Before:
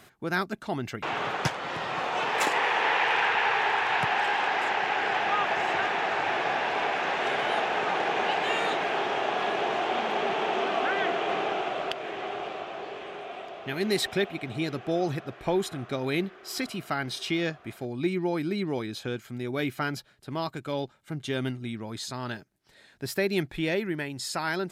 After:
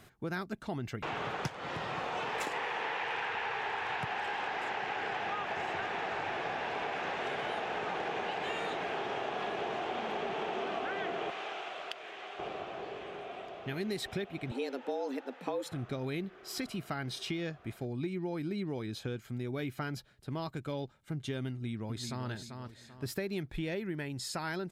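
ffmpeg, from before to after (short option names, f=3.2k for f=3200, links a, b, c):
-filter_complex "[0:a]asettb=1/sr,asplit=3[a][b][c];[a]atrim=end=11.304[d];[b]atrim=start=11.3:end=12.39,asetpts=PTS-STARTPTS,afade=t=in:d=0.004:c=qsin,afade=t=out:st=1.086:d=0.004:c=qsin,highpass=f=1.5k:p=1[e];[c]atrim=start=12.386[f];[d][e]acrossfade=d=0.004:c1=hsin:c2=qsin[g];[g][f]acrossfade=d=0.004:c1=qsin:c2=hsin,asettb=1/sr,asplit=3[h][i][j];[h]atrim=end=14.514[k];[i]atrim=start=14.51:end=15.72,asetpts=PTS-STARTPTS,afade=t=in:d=0.004:c=qsin,afade=t=out:st=1.206:d=0.004:c=qsin,afreqshift=130[l];[j]atrim=start=15.716[m];[k][l]acrossfade=d=0.004:c1=hsin:c2=qsin[n];[n][m]acrossfade=d=0.004:c1=qsin:c2=hsin,asplit=2[o][p];[p]afade=t=in:st=21.5:d=0.01,afade=t=out:st=22.28:d=0.01,aecho=0:1:390|780|1170|1560:0.421697|0.147594|0.0516578|0.0180802[q];[o][q]amix=inputs=2:normalize=0,lowshelf=f=160:g=11,acompressor=threshold=-27dB:ratio=6,equalizer=f=470:w=6.2:g=2.5,volume=-5.5dB"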